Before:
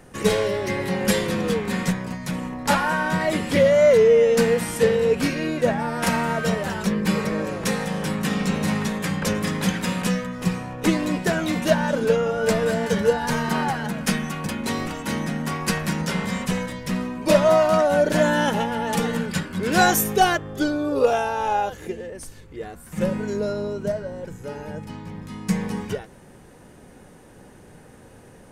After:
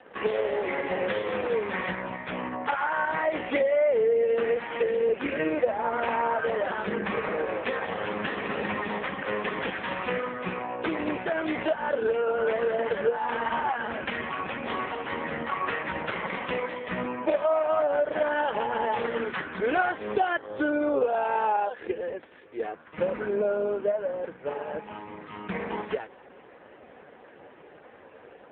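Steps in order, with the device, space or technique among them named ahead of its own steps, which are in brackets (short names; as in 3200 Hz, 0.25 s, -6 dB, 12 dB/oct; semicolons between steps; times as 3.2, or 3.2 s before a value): 5.23–6.74 dynamic EQ 470 Hz, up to +4 dB, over -30 dBFS, Q 0.73; voicemail (BPF 430–3100 Hz; compressor 6:1, threshold -27 dBFS, peak gain reduction 14.5 dB; gain +6 dB; AMR-NB 4.75 kbps 8000 Hz)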